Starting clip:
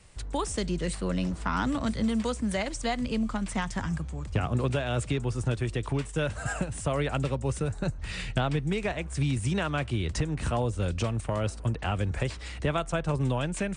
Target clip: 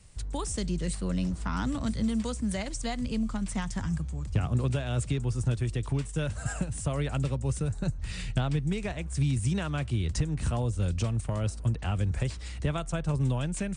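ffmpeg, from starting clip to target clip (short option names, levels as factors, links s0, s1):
-af "bass=f=250:g=8,treble=f=4000:g=7,volume=0.501"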